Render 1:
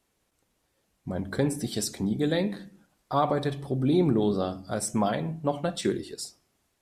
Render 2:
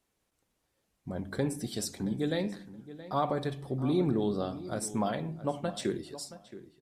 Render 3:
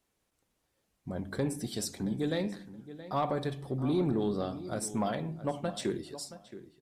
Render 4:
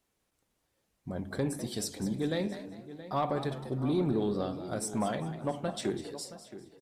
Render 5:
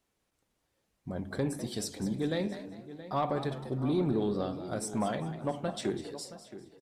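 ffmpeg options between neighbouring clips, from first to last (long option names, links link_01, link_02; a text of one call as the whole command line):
ffmpeg -i in.wav -filter_complex "[0:a]asplit=2[link_01][link_02];[link_02]adelay=673,lowpass=frequency=2900:poles=1,volume=-15dB,asplit=2[link_03][link_04];[link_04]adelay=673,lowpass=frequency=2900:poles=1,volume=0.22[link_05];[link_01][link_03][link_05]amix=inputs=3:normalize=0,volume=-5dB" out.wav
ffmpeg -i in.wav -af "asoftclip=type=tanh:threshold=-19.5dB" out.wav
ffmpeg -i in.wav -filter_complex "[0:a]asplit=4[link_01][link_02][link_03][link_04];[link_02]adelay=199,afreqshift=82,volume=-13dB[link_05];[link_03]adelay=398,afreqshift=164,volume=-23.5dB[link_06];[link_04]adelay=597,afreqshift=246,volume=-33.9dB[link_07];[link_01][link_05][link_06][link_07]amix=inputs=4:normalize=0" out.wav
ffmpeg -i in.wav -af "highshelf=frequency=9600:gain=-5" out.wav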